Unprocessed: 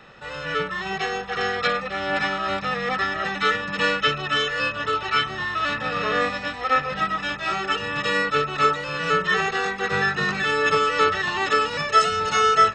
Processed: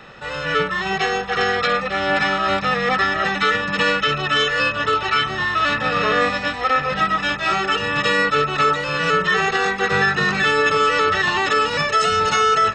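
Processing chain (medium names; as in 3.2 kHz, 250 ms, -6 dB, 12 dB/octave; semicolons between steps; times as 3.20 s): loudness maximiser +13.5 dB; trim -7.5 dB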